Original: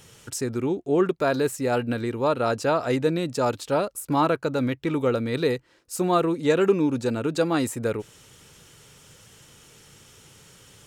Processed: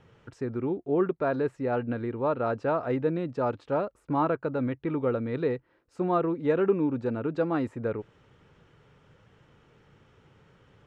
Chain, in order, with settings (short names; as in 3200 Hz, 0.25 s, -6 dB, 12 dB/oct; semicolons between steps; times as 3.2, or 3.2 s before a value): LPF 1700 Hz 12 dB/oct; gain -4 dB